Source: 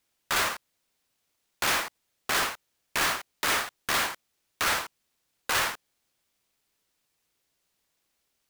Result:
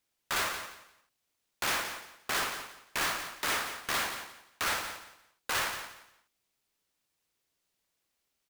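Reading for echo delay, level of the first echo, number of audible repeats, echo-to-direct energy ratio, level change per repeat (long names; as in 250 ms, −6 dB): 174 ms, −9.5 dB, 3, −9.0 dB, −12.5 dB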